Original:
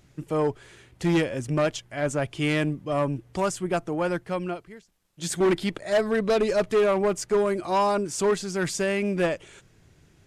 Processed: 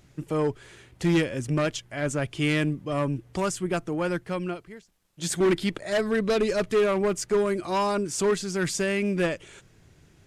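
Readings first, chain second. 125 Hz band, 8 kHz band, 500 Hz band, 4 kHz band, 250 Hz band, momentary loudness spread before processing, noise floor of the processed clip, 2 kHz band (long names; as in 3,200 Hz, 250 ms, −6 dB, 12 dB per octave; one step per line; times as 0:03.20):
+1.0 dB, +1.0 dB, −1.5 dB, +1.0 dB, +0.5 dB, 7 LU, −59 dBFS, 0.0 dB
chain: dynamic equaliser 740 Hz, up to −6 dB, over −38 dBFS, Q 1.3
level +1 dB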